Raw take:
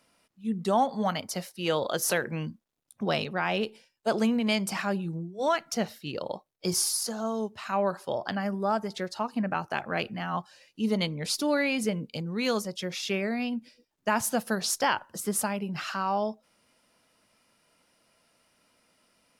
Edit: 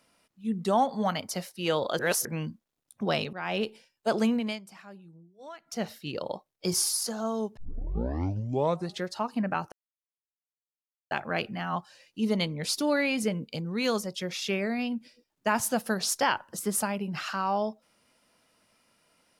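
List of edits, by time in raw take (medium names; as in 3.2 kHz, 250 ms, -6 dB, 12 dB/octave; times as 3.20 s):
1.99–2.25 s: reverse
3.33–3.61 s: fade in, from -13 dB
4.33–5.90 s: dip -18.5 dB, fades 0.28 s
7.57 s: tape start 1.49 s
9.72 s: insert silence 1.39 s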